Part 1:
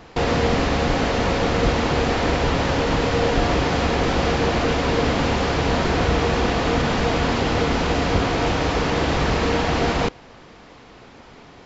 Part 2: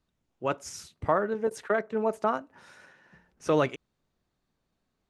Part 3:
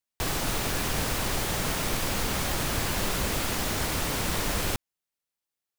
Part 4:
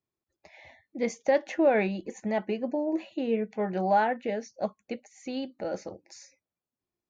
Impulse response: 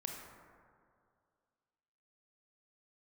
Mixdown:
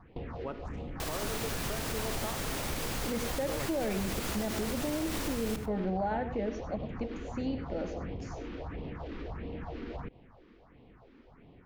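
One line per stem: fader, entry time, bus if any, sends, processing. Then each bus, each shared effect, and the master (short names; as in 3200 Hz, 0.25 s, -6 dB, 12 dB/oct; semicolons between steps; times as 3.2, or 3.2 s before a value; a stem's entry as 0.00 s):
-7.5 dB, 0.00 s, bus A, no send, no echo send, limiter -16 dBFS, peak gain reduction 9.5 dB; phaser stages 4, 1.5 Hz, lowest notch 110–1500 Hz
-2.0 dB, 0.00 s, bus A, send -18 dB, no echo send, Wiener smoothing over 15 samples
-8.0 dB, 0.80 s, no bus, send -11.5 dB, echo send -14.5 dB, dry
-8.5 dB, 2.10 s, no bus, no send, echo send -11 dB, low shelf 480 Hz +11 dB
bus A: 0.0 dB, tape spacing loss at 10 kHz 39 dB; compressor, threshold -36 dBFS, peak gain reduction 13 dB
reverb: on, RT60 2.2 s, pre-delay 22 ms
echo: echo 97 ms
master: limiter -24 dBFS, peak gain reduction 9 dB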